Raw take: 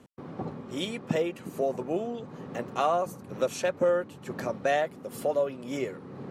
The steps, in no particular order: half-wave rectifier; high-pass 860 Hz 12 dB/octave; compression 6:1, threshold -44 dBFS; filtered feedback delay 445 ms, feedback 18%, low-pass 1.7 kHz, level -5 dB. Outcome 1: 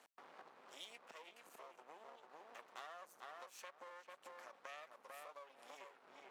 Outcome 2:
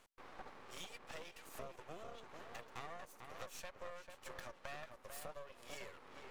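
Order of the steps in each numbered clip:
filtered feedback delay > compression > half-wave rectifier > high-pass; high-pass > compression > filtered feedback delay > half-wave rectifier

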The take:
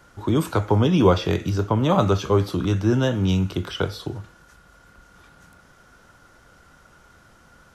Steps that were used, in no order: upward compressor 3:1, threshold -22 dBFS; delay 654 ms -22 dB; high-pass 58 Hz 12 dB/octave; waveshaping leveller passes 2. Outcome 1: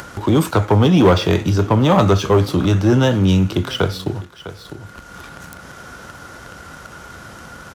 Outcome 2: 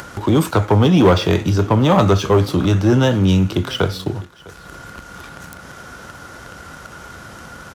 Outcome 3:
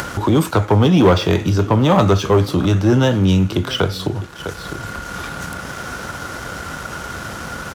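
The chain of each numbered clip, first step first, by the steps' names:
waveshaping leveller > delay > upward compressor > high-pass; waveshaping leveller > high-pass > upward compressor > delay; delay > upward compressor > waveshaping leveller > high-pass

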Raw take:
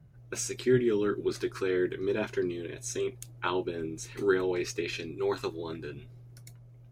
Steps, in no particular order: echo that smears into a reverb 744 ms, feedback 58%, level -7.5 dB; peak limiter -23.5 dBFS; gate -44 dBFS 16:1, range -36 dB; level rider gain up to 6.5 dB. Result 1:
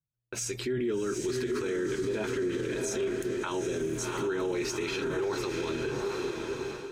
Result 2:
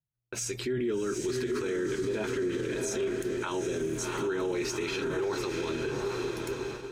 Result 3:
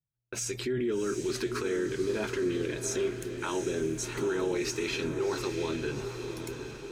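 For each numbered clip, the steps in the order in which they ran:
gate > echo that smears into a reverb > level rider > peak limiter; echo that smears into a reverb > gate > level rider > peak limiter; level rider > peak limiter > echo that smears into a reverb > gate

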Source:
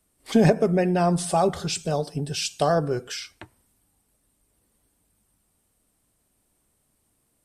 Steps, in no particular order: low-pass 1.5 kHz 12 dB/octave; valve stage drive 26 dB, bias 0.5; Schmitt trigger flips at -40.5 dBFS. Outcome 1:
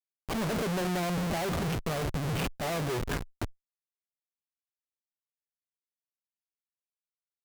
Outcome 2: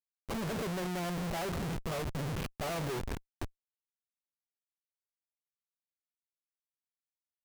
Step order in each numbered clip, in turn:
low-pass > Schmitt trigger > valve stage; low-pass > valve stage > Schmitt trigger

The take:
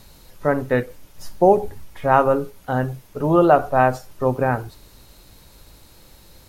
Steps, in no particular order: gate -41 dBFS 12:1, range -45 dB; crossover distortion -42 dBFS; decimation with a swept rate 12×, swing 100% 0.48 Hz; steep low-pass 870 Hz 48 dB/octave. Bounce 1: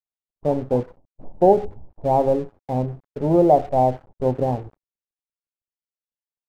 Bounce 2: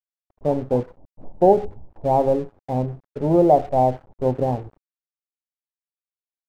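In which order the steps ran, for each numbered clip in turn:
decimation with a swept rate > steep low-pass > crossover distortion > gate; gate > decimation with a swept rate > steep low-pass > crossover distortion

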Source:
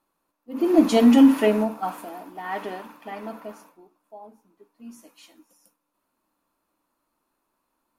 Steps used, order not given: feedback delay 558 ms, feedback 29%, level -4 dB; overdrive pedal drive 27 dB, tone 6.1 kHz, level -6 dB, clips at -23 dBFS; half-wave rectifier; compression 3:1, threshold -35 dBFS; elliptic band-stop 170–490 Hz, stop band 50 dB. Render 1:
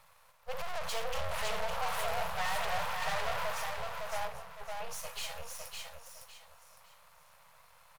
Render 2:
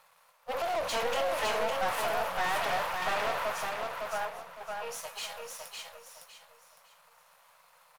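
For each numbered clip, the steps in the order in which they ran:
compression > overdrive pedal > feedback delay > half-wave rectifier > elliptic band-stop; half-wave rectifier > compression > elliptic band-stop > overdrive pedal > feedback delay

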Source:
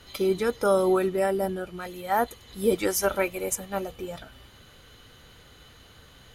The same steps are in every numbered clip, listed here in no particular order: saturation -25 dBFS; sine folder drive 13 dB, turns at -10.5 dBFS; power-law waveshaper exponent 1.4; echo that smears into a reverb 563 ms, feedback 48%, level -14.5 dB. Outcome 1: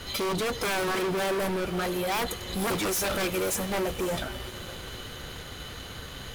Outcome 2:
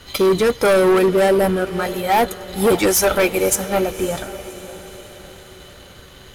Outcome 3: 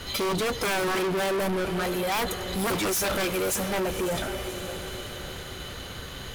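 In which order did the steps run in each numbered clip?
sine folder > saturation > echo that smears into a reverb > power-law waveshaper; saturation > sine folder > power-law waveshaper > echo that smears into a reverb; sine folder > echo that smears into a reverb > saturation > power-law waveshaper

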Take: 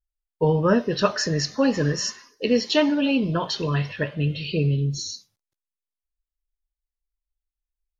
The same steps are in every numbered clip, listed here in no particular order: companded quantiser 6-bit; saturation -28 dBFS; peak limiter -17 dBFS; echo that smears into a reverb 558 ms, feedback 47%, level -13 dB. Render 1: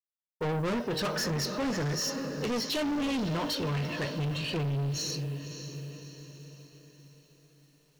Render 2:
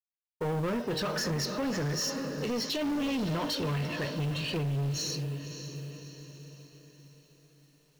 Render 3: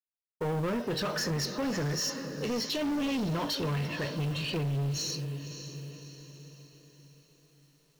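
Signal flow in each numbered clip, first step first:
echo that smears into a reverb > companded quantiser > saturation > peak limiter; echo that smears into a reverb > peak limiter > saturation > companded quantiser; peak limiter > echo that smears into a reverb > saturation > companded quantiser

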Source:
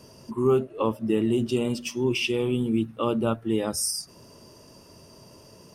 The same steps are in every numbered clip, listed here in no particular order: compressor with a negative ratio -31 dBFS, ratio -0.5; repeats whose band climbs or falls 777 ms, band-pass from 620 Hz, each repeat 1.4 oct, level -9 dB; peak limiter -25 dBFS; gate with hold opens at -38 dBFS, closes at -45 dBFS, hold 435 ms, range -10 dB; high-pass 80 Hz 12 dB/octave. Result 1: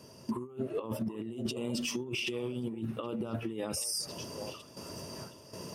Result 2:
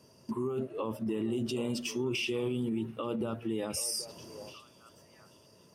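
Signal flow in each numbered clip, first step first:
gate with hold > compressor with a negative ratio > repeats whose band climbs or falls > peak limiter > high-pass; peak limiter > high-pass > gate with hold > repeats whose band climbs or falls > compressor with a negative ratio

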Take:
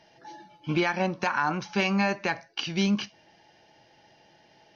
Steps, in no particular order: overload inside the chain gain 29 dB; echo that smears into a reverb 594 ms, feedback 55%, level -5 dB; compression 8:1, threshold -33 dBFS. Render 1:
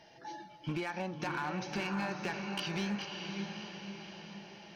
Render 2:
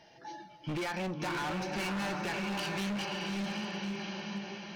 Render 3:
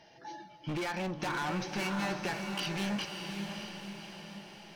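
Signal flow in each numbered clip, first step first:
compression > echo that smears into a reverb > overload inside the chain; echo that smears into a reverb > overload inside the chain > compression; overload inside the chain > compression > echo that smears into a reverb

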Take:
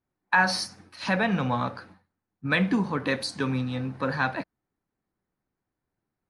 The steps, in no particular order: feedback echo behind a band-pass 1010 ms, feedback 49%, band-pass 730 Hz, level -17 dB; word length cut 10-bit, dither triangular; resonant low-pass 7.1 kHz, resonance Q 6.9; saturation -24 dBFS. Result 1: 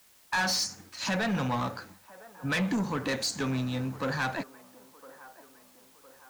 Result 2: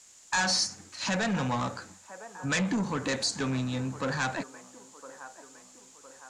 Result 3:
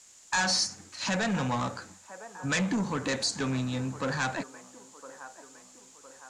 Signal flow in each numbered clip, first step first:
resonant low-pass > saturation > feedback echo behind a band-pass > word length cut; feedback echo behind a band-pass > word length cut > saturation > resonant low-pass; feedback echo behind a band-pass > saturation > word length cut > resonant low-pass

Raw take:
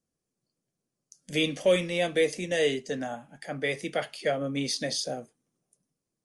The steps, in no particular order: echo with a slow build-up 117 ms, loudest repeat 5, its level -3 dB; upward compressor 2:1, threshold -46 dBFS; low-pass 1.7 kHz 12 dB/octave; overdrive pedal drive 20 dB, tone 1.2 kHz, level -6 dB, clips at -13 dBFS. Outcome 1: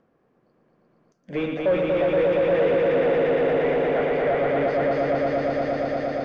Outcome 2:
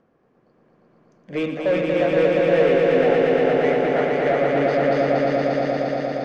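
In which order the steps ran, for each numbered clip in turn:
echo with a slow build-up > overdrive pedal > upward compressor > low-pass; upward compressor > low-pass > overdrive pedal > echo with a slow build-up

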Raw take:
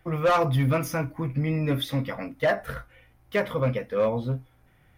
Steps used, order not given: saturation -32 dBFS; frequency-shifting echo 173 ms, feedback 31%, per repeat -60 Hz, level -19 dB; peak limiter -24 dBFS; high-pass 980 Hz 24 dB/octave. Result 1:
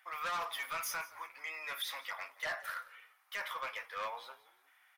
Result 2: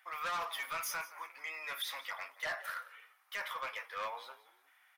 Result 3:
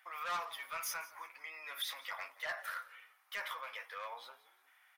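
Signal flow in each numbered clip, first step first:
high-pass > peak limiter > saturation > frequency-shifting echo; high-pass > peak limiter > frequency-shifting echo > saturation; peak limiter > high-pass > saturation > frequency-shifting echo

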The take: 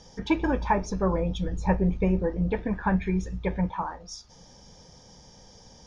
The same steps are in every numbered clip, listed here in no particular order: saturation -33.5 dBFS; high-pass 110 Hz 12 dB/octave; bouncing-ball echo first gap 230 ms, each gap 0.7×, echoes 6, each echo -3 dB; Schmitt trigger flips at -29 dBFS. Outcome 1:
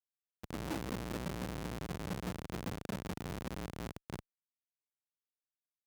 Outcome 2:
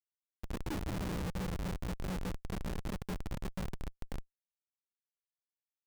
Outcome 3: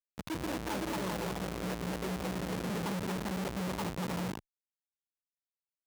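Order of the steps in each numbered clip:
saturation > bouncing-ball echo > Schmitt trigger > high-pass; high-pass > saturation > bouncing-ball echo > Schmitt trigger; bouncing-ball echo > Schmitt trigger > saturation > high-pass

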